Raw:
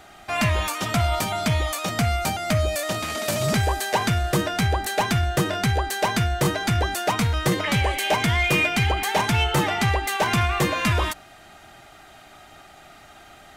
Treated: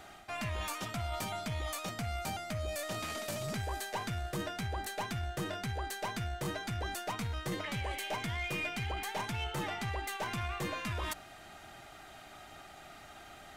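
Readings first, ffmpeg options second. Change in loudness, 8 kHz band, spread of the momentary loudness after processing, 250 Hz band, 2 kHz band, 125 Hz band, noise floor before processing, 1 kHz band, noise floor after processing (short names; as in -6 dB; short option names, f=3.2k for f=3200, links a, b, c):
-15.0 dB, -14.0 dB, 15 LU, -15.5 dB, -14.5 dB, -15.5 dB, -48 dBFS, -14.5 dB, -53 dBFS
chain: -af "areverse,acompressor=threshold=-32dB:ratio=4,areverse,aeval=exprs='0.1*(cos(1*acos(clip(val(0)/0.1,-1,1)))-cos(1*PI/2))+0.00316*(cos(6*acos(clip(val(0)/0.1,-1,1)))-cos(6*PI/2))':c=same,volume=-4.5dB"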